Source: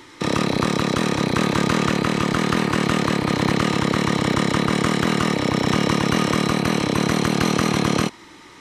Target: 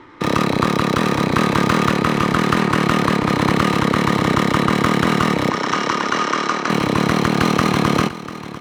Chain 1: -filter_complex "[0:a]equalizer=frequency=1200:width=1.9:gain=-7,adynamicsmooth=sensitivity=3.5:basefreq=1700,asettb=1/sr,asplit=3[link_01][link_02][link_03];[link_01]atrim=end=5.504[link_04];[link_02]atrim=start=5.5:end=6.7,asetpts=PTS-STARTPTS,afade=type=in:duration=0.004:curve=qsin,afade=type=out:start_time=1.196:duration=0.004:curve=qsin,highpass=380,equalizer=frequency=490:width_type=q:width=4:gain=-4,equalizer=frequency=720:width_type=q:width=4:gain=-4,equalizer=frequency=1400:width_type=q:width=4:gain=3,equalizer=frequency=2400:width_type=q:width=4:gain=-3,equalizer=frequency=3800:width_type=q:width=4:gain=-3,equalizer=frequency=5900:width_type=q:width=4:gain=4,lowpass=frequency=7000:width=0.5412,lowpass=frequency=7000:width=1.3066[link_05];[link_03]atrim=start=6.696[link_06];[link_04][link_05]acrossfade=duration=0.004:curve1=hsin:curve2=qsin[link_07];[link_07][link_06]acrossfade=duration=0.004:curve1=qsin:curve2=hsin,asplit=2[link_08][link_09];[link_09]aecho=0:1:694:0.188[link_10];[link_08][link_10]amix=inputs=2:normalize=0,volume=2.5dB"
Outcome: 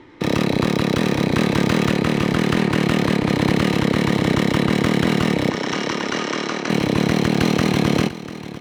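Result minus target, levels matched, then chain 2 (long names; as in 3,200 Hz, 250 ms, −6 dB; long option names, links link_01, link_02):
1,000 Hz band −6.0 dB
-filter_complex "[0:a]equalizer=frequency=1200:width=1.9:gain=4,adynamicsmooth=sensitivity=3.5:basefreq=1700,asettb=1/sr,asplit=3[link_01][link_02][link_03];[link_01]atrim=end=5.504[link_04];[link_02]atrim=start=5.5:end=6.7,asetpts=PTS-STARTPTS,afade=type=in:duration=0.004:curve=qsin,afade=type=out:start_time=1.196:duration=0.004:curve=qsin,highpass=380,equalizer=frequency=490:width_type=q:width=4:gain=-4,equalizer=frequency=720:width_type=q:width=4:gain=-4,equalizer=frequency=1400:width_type=q:width=4:gain=3,equalizer=frequency=2400:width_type=q:width=4:gain=-3,equalizer=frequency=3800:width_type=q:width=4:gain=-3,equalizer=frequency=5900:width_type=q:width=4:gain=4,lowpass=frequency=7000:width=0.5412,lowpass=frequency=7000:width=1.3066[link_05];[link_03]atrim=start=6.696[link_06];[link_04][link_05]acrossfade=duration=0.004:curve1=hsin:curve2=qsin[link_07];[link_07][link_06]acrossfade=duration=0.004:curve1=qsin:curve2=hsin,asplit=2[link_08][link_09];[link_09]aecho=0:1:694:0.188[link_10];[link_08][link_10]amix=inputs=2:normalize=0,volume=2.5dB"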